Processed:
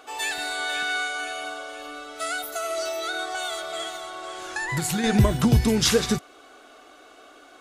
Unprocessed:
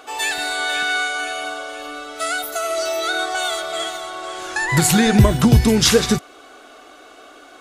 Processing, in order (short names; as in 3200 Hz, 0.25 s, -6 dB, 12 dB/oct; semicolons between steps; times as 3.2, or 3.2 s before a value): 2.88–5.04 compressor 2:1, threshold -21 dBFS, peak gain reduction 6 dB; gain -6 dB